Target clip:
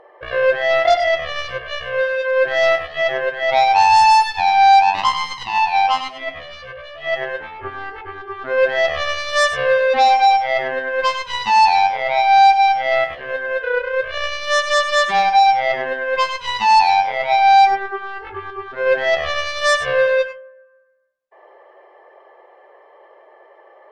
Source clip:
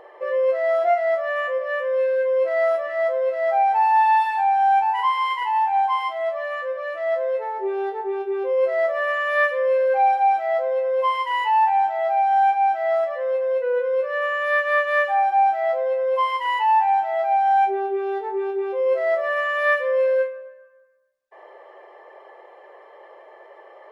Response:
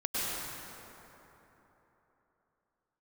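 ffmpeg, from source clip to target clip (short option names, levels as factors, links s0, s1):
-filter_complex "[0:a]aemphasis=mode=reproduction:type=cd,aeval=exprs='0.335*(cos(1*acos(clip(val(0)/0.335,-1,1)))-cos(1*PI/2))+0.075*(cos(7*acos(clip(val(0)/0.335,-1,1)))-cos(7*PI/2))':c=same[s0];[1:a]atrim=start_sample=2205,atrim=end_sample=4410[s1];[s0][s1]afir=irnorm=-1:irlink=0,volume=1.68"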